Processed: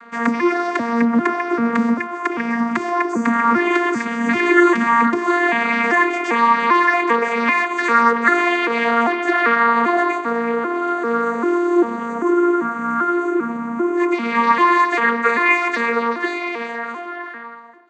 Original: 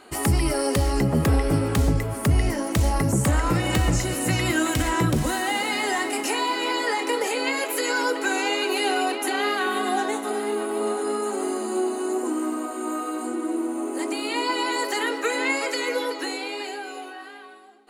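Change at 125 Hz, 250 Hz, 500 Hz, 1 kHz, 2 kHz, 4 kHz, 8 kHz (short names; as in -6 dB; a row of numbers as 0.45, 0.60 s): under -15 dB, +7.5 dB, +5.5 dB, +10.5 dB, +9.0 dB, -5.0 dB, under -10 dB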